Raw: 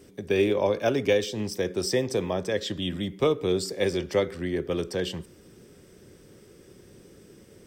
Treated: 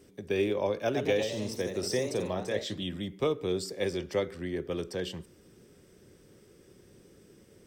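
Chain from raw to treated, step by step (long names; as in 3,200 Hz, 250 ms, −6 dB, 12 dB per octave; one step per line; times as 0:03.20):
0:00.81–0:02.83: delay with pitch and tempo change per echo 117 ms, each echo +1 semitone, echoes 3, each echo −6 dB
level −5.5 dB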